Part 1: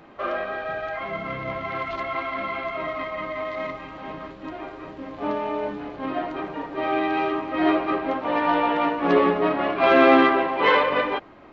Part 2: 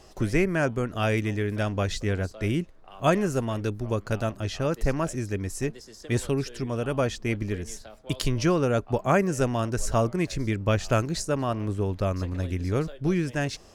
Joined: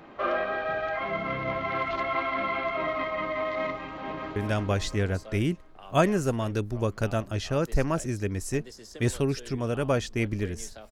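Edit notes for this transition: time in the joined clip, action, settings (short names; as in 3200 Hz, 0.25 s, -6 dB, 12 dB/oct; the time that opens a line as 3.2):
part 1
3.82–4.36 echo throw 0.35 s, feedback 45%, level -4 dB
4.36 switch to part 2 from 1.45 s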